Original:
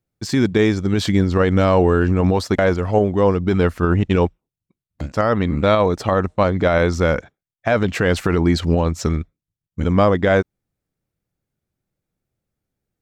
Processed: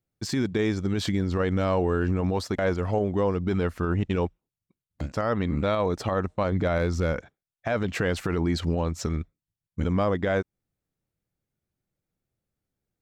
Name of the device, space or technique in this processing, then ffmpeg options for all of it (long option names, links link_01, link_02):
clipper into limiter: -filter_complex "[0:a]asettb=1/sr,asplit=3[link_01][link_02][link_03];[link_01]atrim=end=6.524[link_04];[link_02]atrim=start=6.52:end=7.13,asetpts=PTS-STARTPTS,afade=type=in:duration=0.004:curve=qsin,afade=type=out:start_time=0.606:duration=0.004:curve=qsin,lowshelf=frequency=210:gain=5.5[link_05];[link_03]atrim=start=7.126[link_06];[link_04][link_05]acrossfade=duration=0.004:curve1=hsin:curve2=qsin[link_07];[link_07][link_06]acrossfade=duration=0.004:curve1=qsin:curve2=hsin,asoftclip=type=hard:threshold=-5dB,alimiter=limit=-11dB:level=0:latency=1:release=205,volume=-4.5dB"